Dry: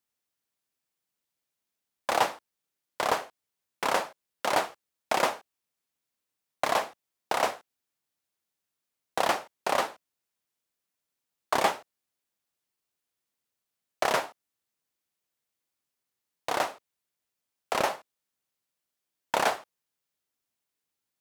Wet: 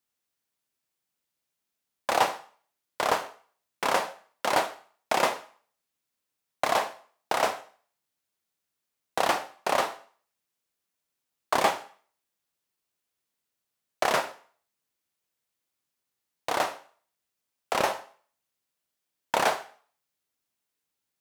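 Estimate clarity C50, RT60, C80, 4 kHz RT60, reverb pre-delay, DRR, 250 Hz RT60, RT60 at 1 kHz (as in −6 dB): 14.5 dB, 0.45 s, 18.5 dB, 0.45 s, 21 ms, 10.0 dB, 0.45 s, 0.50 s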